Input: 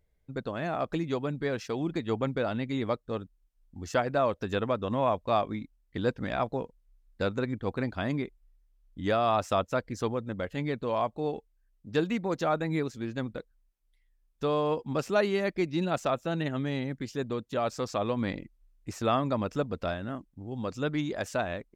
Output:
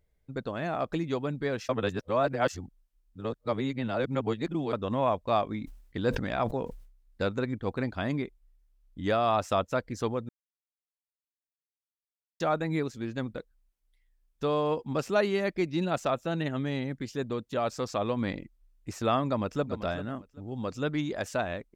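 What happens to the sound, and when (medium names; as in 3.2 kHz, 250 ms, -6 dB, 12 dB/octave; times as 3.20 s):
1.69–4.73 s: reverse
5.46–7.24 s: decay stretcher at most 83 dB/s
10.29–12.40 s: mute
19.28–19.68 s: echo throw 390 ms, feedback 20%, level -11.5 dB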